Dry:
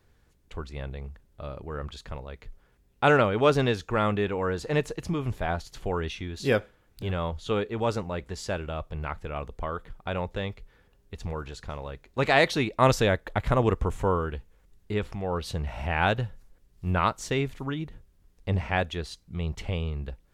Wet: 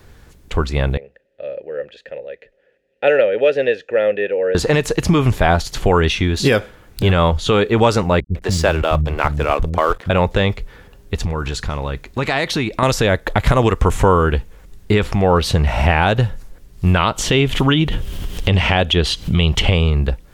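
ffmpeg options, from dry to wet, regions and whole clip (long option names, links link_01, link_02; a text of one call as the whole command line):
ffmpeg -i in.wav -filter_complex "[0:a]asettb=1/sr,asplit=3[link_01][link_02][link_03];[link_01]atrim=end=0.974[link_04];[link_02]atrim=start=0.97:end=4.55,asetpts=PTS-STARTPTS,afade=type=in:duration=0.004:curve=qsin,afade=type=out:start_time=3.576:duration=0.004:curve=qsin,asplit=3[link_05][link_06][link_07];[link_05]bandpass=frequency=530:width_type=q:width=8,volume=0dB[link_08];[link_06]bandpass=frequency=1840:width_type=q:width=8,volume=-6dB[link_09];[link_07]bandpass=frequency=2480:width_type=q:width=8,volume=-9dB[link_10];[link_08][link_09][link_10]amix=inputs=3:normalize=0,equalizer=frequency=79:width_type=o:width=0.36:gain=-13[link_11];[link_03]atrim=start=4.546[link_12];[link_04][link_11]acrossfade=duration=0.004:curve1=hsin:curve2=qsin[link_13];[link_13][link_12]acrossfade=duration=0.004:curve1=qsin:curve2=hsin,asettb=1/sr,asplit=3[link_14][link_15][link_16];[link_14]atrim=end=8.204[link_17];[link_15]atrim=start=8.2:end=10.1,asetpts=PTS-STARTPTS,afade=type=in:duration=0.004:curve=qsin,afade=type=out:start_time=1.896:duration=0.004:curve=qsin,aeval=exprs='sgn(val(0))*max(abs(val(0))-0.00266,0)':channel_layout=same,acrossover=split=250[link_18][link_19];[link_19]adelay=150[link_20];[link_18][link_20]amix=inputs=2:normalize=0,atrim=end_sample=83790[link_21];[link_16]atrim=start=10.096[link_22];[link_17][link_21]acrossfade=duration=0.004:curve1=hsin:curve2=qsin[link_23];[link_23][link_22]acrossfade=duration=0.004:curve1=qsin:curve2=hsin,asettb=1/sr,asplit=3[link_24][link_25][link_26];[link_24]atrim=end=11.244[link_27];[link_25]atrim=start=11.24:end=12.83,asetpts=PTS-STARTPTS,afade=type=in:duration=0.004:curve=qsin,afade=type=out:start_time=1.586:duration=0.004:curve=qsin,acompressor=threshold=-36dB:ratio=3:attack=3.2:release=140:knee=1:detection=peak,equalizer=frequency=560:width_type=o:width=1.1:gain=-4[link_28];[link_26]atrim=start=12.826[link_29];[link_27][link_28]acrossfade=duration=0.004:curve1=hsin:curve2=qsin[link_30];[link_30][link_29]acrossfade=duration=0.004:curve1=qsin:curve2=hsin,asettb=1/sr,asplit=3[link_31][link_32][link_33];[link_31]atrim=end=16.964[link_34];[link_32]atrim=start=16.96:end=19.71,asetpts=PTS-STARTPTS,afade=type=in:duration=0.004:curve=qsin,afade=type=out:start_time=2.746:duration=0.004:curve=qsin,equalizer=frequency=3100:width_type=o:width=0.47:gain=12.5,acompressor=mode=upward:threshold=-26dB:ratio=2.5:attack=3.2:release=140:knee=2.83:detection=peak[link_35];[link_33]atrim=start=19.706[link_36];[link_34][link_35]acrossfade=duration=0.004:curve1=hsin:curve2=qsin[link_37];[link_37][link_36]acrossfade=duration=0.004:curve1=qsin:curve2=hsin,acrossover=split=1100|3200[link_38][link_39][link_40];[link_38]acompressor=threshold=-29dB:ratio=4[link_41];[link_39]acompressor=threshold=-37dB:ratio=4[link_42];[link_40]acompressor=threshold=-42dB:ratio=4[link_43];[link_41][link_42][link_43]amix=inputs=3:normalize=0,alimiter=level_in=19.5dB:limit=-1dB:release=50:level=0:latency=1,volume=-1dB" out.wav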